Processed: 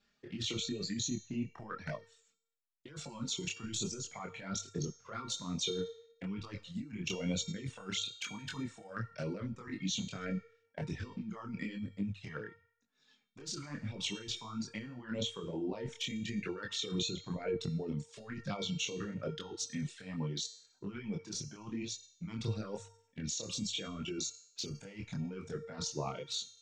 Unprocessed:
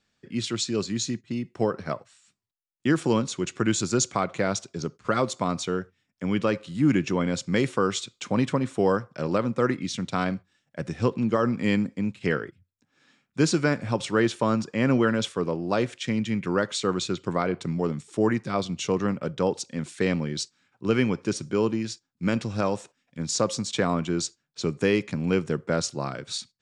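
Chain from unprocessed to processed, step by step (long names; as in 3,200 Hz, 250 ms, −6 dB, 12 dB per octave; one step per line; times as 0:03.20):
low-pass filter 6,600 Hz 24 dB per octave
hum removal 49.73 Hz, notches 2
reverb reduction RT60 1.8 s
compressor whose output falls as the input rises −33 dBFS, ratio −1
flanger swept by the level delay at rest 5 ms, full sweep at −27.5 dBFS
tuned comb filter 460 Hz, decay 0.67 s, mix 80%
multi-voice chorus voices 2, 1 Hz, delay 24 ms, depth 4.4 ms
level +11.5 dB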